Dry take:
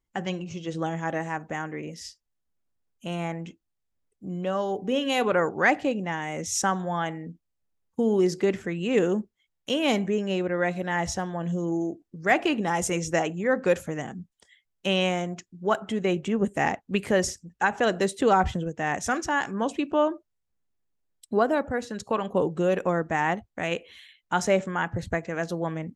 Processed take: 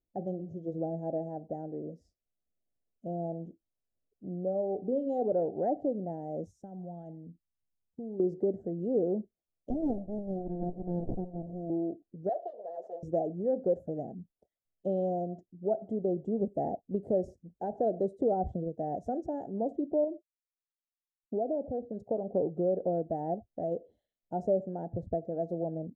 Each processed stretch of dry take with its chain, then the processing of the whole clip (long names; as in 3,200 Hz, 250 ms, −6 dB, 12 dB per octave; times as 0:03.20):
0:06.51–0:08.20: parametric band 560 Hz −11.5 dB 2.2 octaves + downward compressor, threshold −32 dBFS
0:09.70–0:11.70: bass and treble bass −13 dB, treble +13 dB + windowed peak hold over 65 samples
0:12.29–0:13.03: lower of the sound and its delayed copy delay 1.7 ms + Bessel high-pass filter 660 Hz, order 4 + high-frequency loss of the air 170 metres
0:20.04–0:21.93: downward expander −44 dBFS + low-pass filter 1,400 Hz + downward compressor 2 to 1, threshold −27 dBFS
whole clip: elliptic low-pass filter 690 Hz, stop band 40 dB; low-shelf EQ 460 Hz −10 dB; downward compressor 1.5 to 1, threshold −33 dBFS; level +3.5 dB